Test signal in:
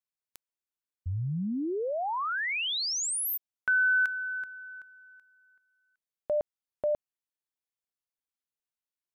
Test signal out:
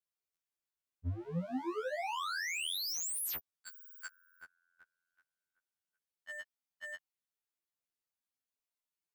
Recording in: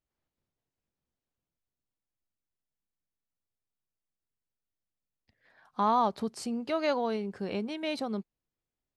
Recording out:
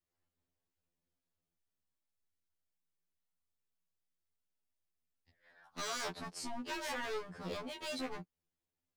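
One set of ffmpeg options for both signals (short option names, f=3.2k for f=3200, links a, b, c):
-af "aeval=exprs='0.0266*(abs(mod(val(0)/0.0266+3,4)-2)-1)':c=same,afftfilt=real='re*2*eq(mod(b,4),0)':imag='im*2*eq(mod(b,4),0)':win_size=2048:overlap=0.75"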